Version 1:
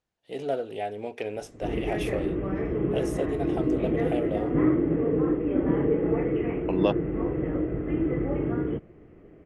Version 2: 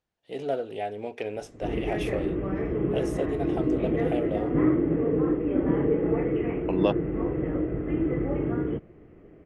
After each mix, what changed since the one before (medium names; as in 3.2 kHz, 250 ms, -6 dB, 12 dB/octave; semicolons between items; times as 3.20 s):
master: add treble shelf 10 kHz -7.5 dB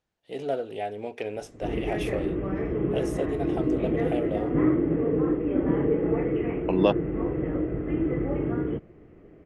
second voice +3.0 dB; master: add treble shelf 9.5 kHz +4 dB